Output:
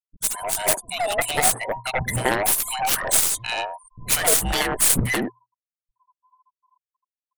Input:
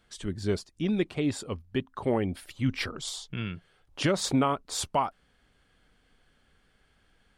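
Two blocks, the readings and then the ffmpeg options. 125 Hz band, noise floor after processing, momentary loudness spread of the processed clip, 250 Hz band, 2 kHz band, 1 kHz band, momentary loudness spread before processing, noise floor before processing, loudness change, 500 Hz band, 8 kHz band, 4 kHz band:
+1.5 dB, below −85 dBFS, 9 LU, −3.0 dB, +13.0 dB, +8.0 dB, 10 LU, −68 dBFS, +10.0 dB, +4.5 dB, +19.0 dB, +9.5 dB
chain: -filter_complex "[0:a]afftfilt=real='real(if(between(b,1,1008),(2*floor((b-1)/48)+1)*48-b,b),0)':imag='imag(if(between(b,1,1008),(2*floor((b-1)/48)+1)*48-b,b),0)*if(between(b,1,1008),-1,1)':win_size=2048:overlap=0.75,agate=range=-33dB:threshold=-58dB:ratio=3:detection=peak,aexciter=amount=10.7:drive=9.6:freq=7900,afftfilt=real='re*gte(hypot(re,im),0.00447)':imag='im*gte(hypot(re,im),0.00447)':win_size=1024:overlap=0.75,acompressor=threshold=-24dB:ratio=8,asuperstop=centerf=860:order=4:qfactor=4.6,equalizer=frequency=120:width_type=o:width=0.23:gain=14.5,aeval=exprs='clip(val(0),-1,0.0668)':channel_layout=same,acrossover=split=210|1100[link_01][link_02][link_03];[link_03]adelay=110[link_04];[link_02]adelay=190[link_05];[link_01][link_05][link_04]amix=inputs=3:normalize=0,aeval=exprs='0.168*(cos(1*acos(clip(val(0)/0.168,-1,1)))-cos(1*PI/2))+0.0531*(cos(7*acos(clip(val(0)/0.168,-1,1)))-cos(7*PI/2))+0.00473*(cos(8*acos(clip(val(0)/0.168,-1,1)))-cos(8*PI/2))':channel_layout=same,dynaudnorm=framelen=140:gausssize=9:maxgain=6dB,alimiter=level_in=13dB:limit=-1dB:release=50:level=0:latency=1,volume=-5dB"

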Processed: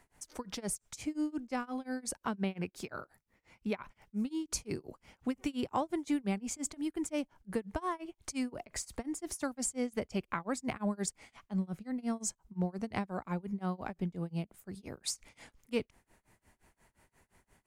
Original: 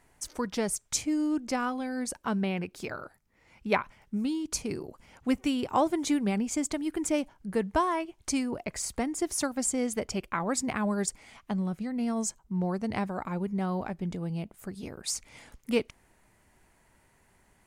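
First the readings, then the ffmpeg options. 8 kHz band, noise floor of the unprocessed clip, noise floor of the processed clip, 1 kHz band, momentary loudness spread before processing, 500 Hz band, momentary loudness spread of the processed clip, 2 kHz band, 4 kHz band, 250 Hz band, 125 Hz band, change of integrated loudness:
−6.5 dB, −66 dBFS, −82 dBFS, −7.5 dB, 9 LU, −7.0 dB, 8 LU, −7.5 dB, −6.5 dB, −6.0 dB, −4.5 dB, −6.5 dB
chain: -filter_complex "[0:a]tremolo=f=5.7:d=0.97,acrossover=split=190[link_01][link_02];[link_02]acompressor=threshold=-34dB:ratio=2[link_03];[link_01][link_03]amix=inputs=2:normalize=0"

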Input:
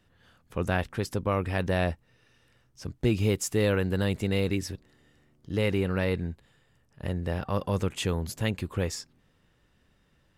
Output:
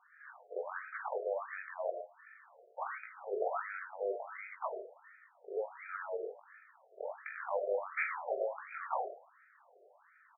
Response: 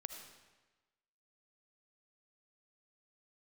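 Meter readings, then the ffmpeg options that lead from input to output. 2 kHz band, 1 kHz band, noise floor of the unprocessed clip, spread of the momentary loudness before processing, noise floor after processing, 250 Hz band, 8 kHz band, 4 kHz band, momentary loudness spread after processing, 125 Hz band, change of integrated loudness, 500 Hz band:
−6.0 dB, −2.0 dB, −67 dBFS, 13 LU, −66 dBFS, below −25 dB, below −40 dB, below −40 dB, 19 LU, below −40 dB, −10.5 dB, −7.5 dB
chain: -filter_complex "[0:a]highpass=frequency=230:width=0.5412,highpass=frequency=230:width=1.3066,acompressor=threshold=-40dB:ratio=20,alimiter=level_in=12dB:limit=-24dB:level=0:latency=1:release=40,volume=-12dB,aexciter=amount=10.1:drive=9:freq=4200,acrusher=bits=3:mode=log:mix=0:aa=0.000001,adynamicsmooth=sensitivity=8:basefreq=1900,aecho=1:1:20|44|72.8|107.4|148.8:0.631|0.398|0.251|0.158|0.1[link_01];[1:a]atrim=start_sample=2205,atrim=end_sample=6174[link_02];[link_01][link_02]afir=irnorm=-1:irlink=0,afftfilt=real='re*between(b*sr/1024,510*pow(1800/510,0.5+0.5*sin(2*PI*1.4*pts/sr))/1.41,510*pow(1800/510,0.5+0.5*sin(2*PI*1.4*pts/sr))*1.41)':imag='im*between(b*sr/1024,510*pow(1800/510,0.5+0.5*sin(2*PI*1.4*pts/sr))/1.41,510*pow(1800/510,0.5+0.5*sin(2*PI*1.4*pts/sr))*1.41)':win_size=1024:overlap=0.75,volume=17dB"

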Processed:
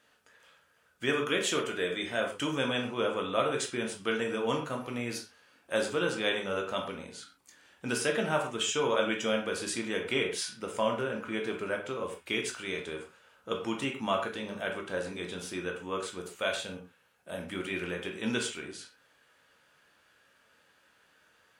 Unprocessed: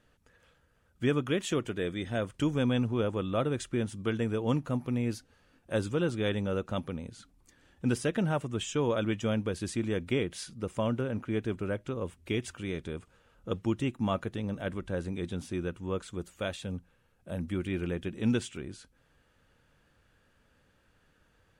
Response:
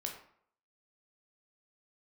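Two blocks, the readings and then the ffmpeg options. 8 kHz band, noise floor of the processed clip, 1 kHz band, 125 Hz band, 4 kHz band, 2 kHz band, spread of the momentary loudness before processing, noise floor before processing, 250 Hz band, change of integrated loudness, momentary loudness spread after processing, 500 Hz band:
+6.5 dB, −67 dBFS, +5.0 dB, −10.5 dB, +7.0 dB, +6.5 dB, 9 LU, −68 dBFS, −4.5 dB, 0.0 dB, 12 LU, +1.0 dB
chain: -filter_complex "[0:a]highpass=frequency=1000:poles=1[link_01];[1:a]atrim=start_sample=2205,afade=type=out:start_time=0.19:duration=0.01,atrim=end_sample=8820[link_02];[link_01][link_02]afir=irnorm=-1:irlink=0,volume=8dB"

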